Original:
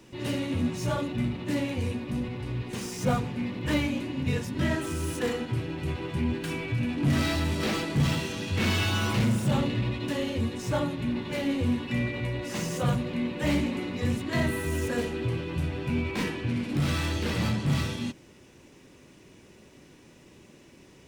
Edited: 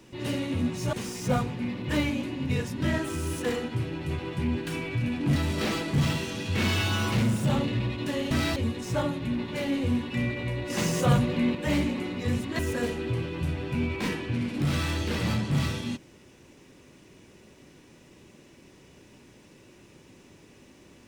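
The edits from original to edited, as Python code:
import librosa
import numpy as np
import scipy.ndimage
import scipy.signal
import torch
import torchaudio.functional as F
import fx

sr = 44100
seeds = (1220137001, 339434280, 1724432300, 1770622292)

y = fx.edit(x, sr, fx.cut(start_s=0.93, length_s=1.77),
    fx.move(start_s=7.13, length_s=0.25, to_s=10.33),
    fx.clip_gain(start_s=12.47, length_s=0.85, db=4.5),
    fx.cut(start_s=14.36, length_s=0.38), tone=tone)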